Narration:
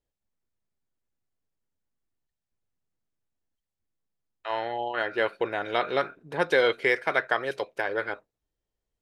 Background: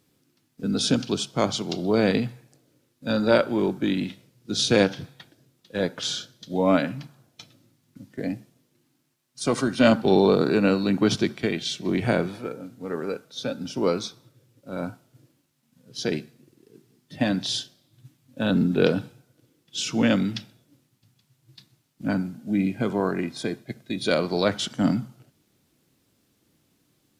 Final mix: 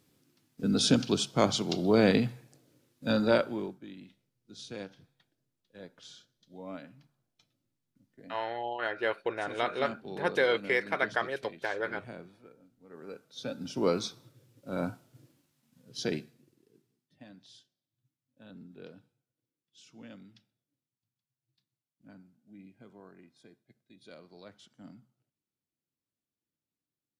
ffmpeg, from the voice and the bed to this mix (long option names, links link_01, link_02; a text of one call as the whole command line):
ffmpeg -i stem1.wav -i stem2.wav -filter_complex "[0:a]adelay=3850,volume=-4.5dB[link_01];[1:a]volume=18.5dB,afade=type=out:start_time=3.04:duration=0.75:silence=0.0944061,afade=type=in:start_time=12.89:duration=1.32:silence=0.0944061,afade=type=out:start_time=15.47:duration=1.68:silence=0.0473151[link_02];[link_01][link_02]amix=inputs=2:normalize=0" out.wav